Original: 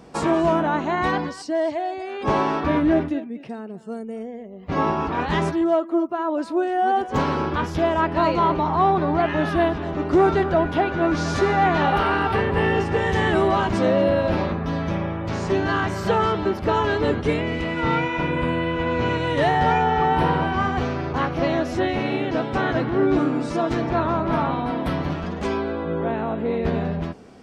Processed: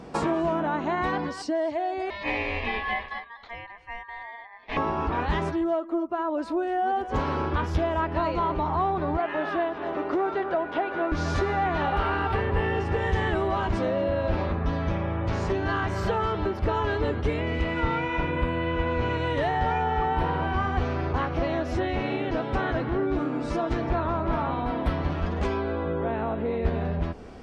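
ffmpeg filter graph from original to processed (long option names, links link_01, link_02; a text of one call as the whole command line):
ffmpeg -i in.wav -filter_complex "[0:a]asettb=1/sr,asplit=3[link_01][link_02][link_03];[link_01]atrim=end=2.104[link_04];[link_02]atrim=start=2.1:end=4.77,asetpts=PTS-STARTPTS,afade=type=in:duration=0.004:curve=qsin,afade=type=out:start_time=2.666:duration=0.004:curve=qsin,highpass=580,lowpass=3400,aeval=exprs='val(0)*sin(2*PI*1400*n/s)':channel_layout=same[link_05];[link_03]atrim=start=4.766[link_06];[link_04][link_05]acrossfade=duration=0.004:curve1=hsin:curve2=qsin[link_07];[link_07][link_06]acrossfade=duration=0.004:curve1=qsin:curve2=hsin,asettb=1/sr,asplit=3[link_08][link_09][link_10];[link_08]atrim=end=9.174[link_11];[link_09]atrim=start=9.17:end=11.12,asetpts=PTS-STARTPTS,afade=type=in:duration=0.004:curve=qsin,afade=type=out:start_time=1.946:duration=0.004:curve=qsin,highpass=350,aemphasis=mode=reproduction:type=50fm[link_12];[link_10]atrim=start=11.116[link_13];[link_11][link_12]acrossfade=duration=0.004:curve1=hsin:curve2=qsin[link_14];[link_14][link_13]acrossfade=duration=0.004:curve1=qsin:curve2=hsin,highshelf=frequency=5700:gain=-9.5,acompressor=threshold=-29dB:ratio=3,asubboost=boost=5.5:cutoff=63,volume=3.5dB" out.wav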